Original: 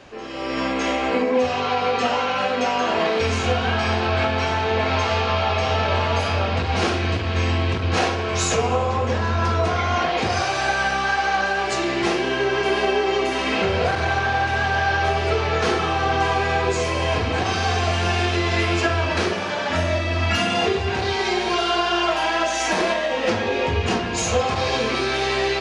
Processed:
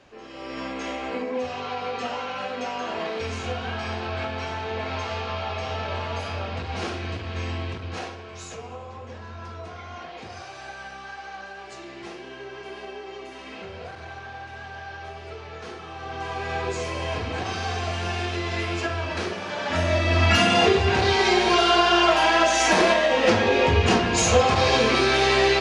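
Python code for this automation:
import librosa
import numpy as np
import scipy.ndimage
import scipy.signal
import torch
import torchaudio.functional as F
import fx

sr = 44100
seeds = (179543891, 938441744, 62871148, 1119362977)

y = fx.gain(x, sr, db=fx.line((7.62, -9.0), (8.37, -17.5), (15.84, -17.5), (16.58, -7.0), (19.41, -7.0), (20.15, 2.5)))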